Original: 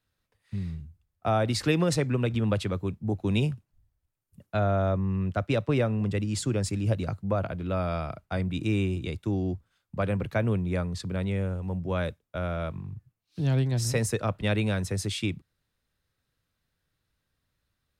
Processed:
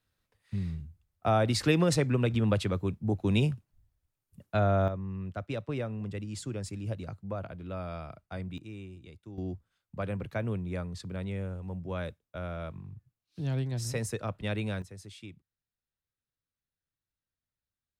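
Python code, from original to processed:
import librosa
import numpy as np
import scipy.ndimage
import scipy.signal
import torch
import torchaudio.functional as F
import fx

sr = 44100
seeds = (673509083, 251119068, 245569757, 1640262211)

y = fx.gain(x, sr, db=fx.steps((0.0, -0.5), (4.88, -9.0), (8.58, -17.5), (9.38, -6.5), (14.82, -17.0)))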